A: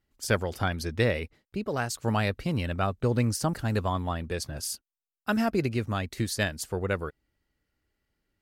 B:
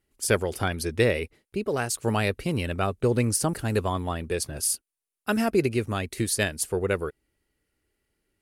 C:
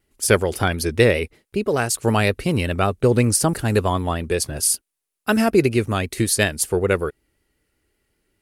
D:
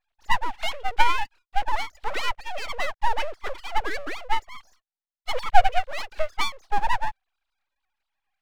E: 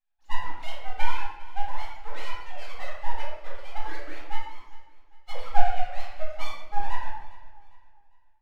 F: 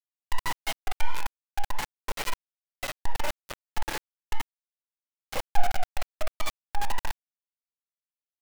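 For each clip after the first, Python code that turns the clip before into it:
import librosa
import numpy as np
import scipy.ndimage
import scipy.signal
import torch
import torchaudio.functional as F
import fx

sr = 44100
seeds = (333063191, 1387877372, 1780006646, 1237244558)

y1 = fx.graphic_eq_15(x, sr, hz=(400, 2500, 10000), db=(7, 4, 12))
y2 = fx.vibrato(y1, sr, rate_hz=5.3, depth_cents=36.0)
y2 = F.gain(torch.from_numpy(y2), 6.5).numpy()
y3 = fx.sine_speech(y2, sr)
y3 = np.abs(y3)
y3 = F.gain(torch.from_numpy(y3), -1.5).numpy()
y4 = fx.echo_feedback(y3, sr, ms=402, feedback_pct=37, wet_db=-18.0)
y4 = fx.room_shoebox(y4, sr, seeds[0], volume_m3=290.0, walls='mixed', distance_m=2.1)
y4 = F.gain(torch.from_numpy(y4), -16.0).numpy()
y5 = np.where(np.abs(y4) >= 10.0 ** (-18.0 / 20.0), y4, 0.0)
y5 = F.gain(torch.from_numpy(y5), -5.5).numpy()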